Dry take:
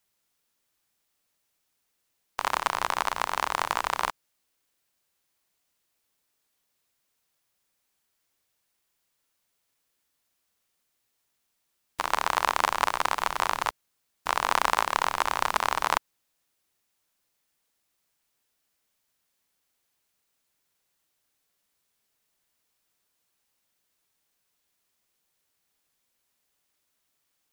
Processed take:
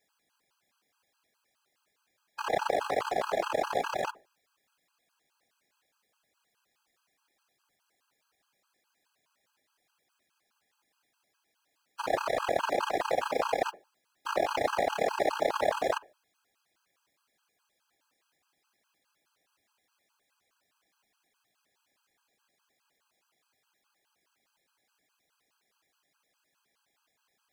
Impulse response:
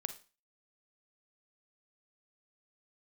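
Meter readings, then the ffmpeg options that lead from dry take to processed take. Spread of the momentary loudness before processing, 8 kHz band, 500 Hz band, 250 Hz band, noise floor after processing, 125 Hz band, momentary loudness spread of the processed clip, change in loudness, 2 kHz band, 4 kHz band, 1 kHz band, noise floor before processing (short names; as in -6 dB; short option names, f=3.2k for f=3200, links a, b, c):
8 LU, -9.5 dB, +8.0 dB, +4.5 dB, -79 dBFS, -1.5 dB, 7 LU, -3.5 dB, -6.5 dB, -7.0 dB, -5.5 dB, -77 dBFS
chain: -filter_complex "[0:a]afreqshift=-390,asplit=2[a][b];[b]highpass=f=720:p=1,volume=22dB,asoftclip=type=tanh:threshold=-7dB[c];[a][c]amix=inputs=2:normalize=0,lowpass=f=2.6k:p=1,volume=-6dB,asplit=2[d][e];[1:a]atrim=start_sample=2205,lowpass=2k[f];[e][f]afir=irnorm=-1:irlink=0,volume=-9.5dB[g];[d][g]amix=inputs=2:normalize=0,afftfilt=real='hypot(re,im)*cos(2*PI*random(0))':imag='hypot(re,im)*sin(2*PI*random(1))':win_size=512:overlap=0.75,afftfilt=real='re*gt(sin(2*PI*4.8*pts/sr)*(1-2*mod(floor(b*sr/1024/820),2)),0)':imag='im*gt(sin(2*PI*4.8*pts/sr)*(1-2*mod(floor(b*sr/1024/820),2)),0)':win_size=1024:overlap=0.75"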